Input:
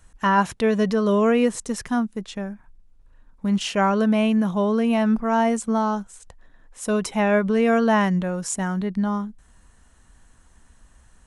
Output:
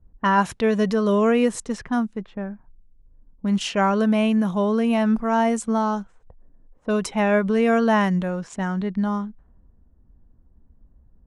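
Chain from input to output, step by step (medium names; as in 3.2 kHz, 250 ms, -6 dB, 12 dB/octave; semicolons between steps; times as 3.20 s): level-controlled noise filter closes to 330 Hz, open at -19.5 dBFS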